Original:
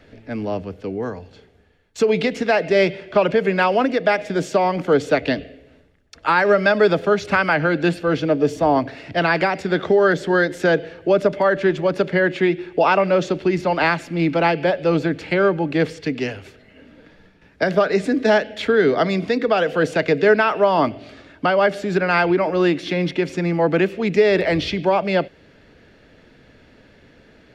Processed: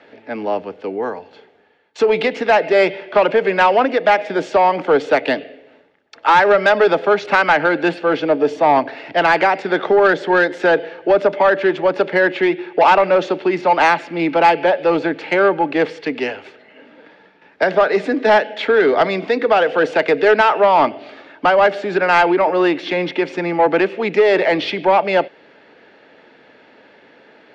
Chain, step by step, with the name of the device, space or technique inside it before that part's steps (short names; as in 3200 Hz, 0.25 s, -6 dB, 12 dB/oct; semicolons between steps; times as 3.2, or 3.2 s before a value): intercom (BPF 350–3600 Hz; bell 860 Hz +7 dB 0.26 oct; soft clip -10.5 dBFS, distortion -16 dB); gain +5.5 dB